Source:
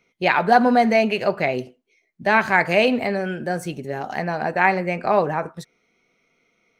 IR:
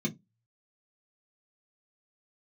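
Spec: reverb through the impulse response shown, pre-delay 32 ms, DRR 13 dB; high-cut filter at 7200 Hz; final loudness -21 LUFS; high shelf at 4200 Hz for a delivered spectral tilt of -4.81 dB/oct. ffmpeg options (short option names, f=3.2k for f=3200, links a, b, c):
-filter_complex "[0:a]lowpass=7.2k,highshelf=f=4.2k:g=-4.5,asplit=2[a][b];[1:a]atrim=start_sample=2205,adelay=32[c];[b][c]afir=irnorm=-1:irlink=0,volume=-17dB[d];[a][d]amix=inputs=2:normalize=0,volume=-2dB"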